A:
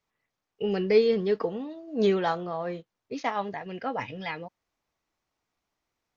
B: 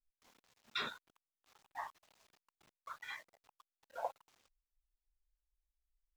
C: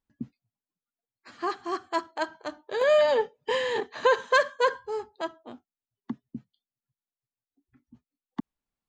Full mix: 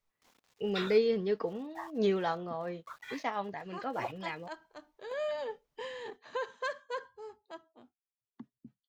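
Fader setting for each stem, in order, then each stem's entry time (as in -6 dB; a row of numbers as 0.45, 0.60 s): -5.5, +1.0, -14.5 dB; 0.00, 0.00, 2.30 s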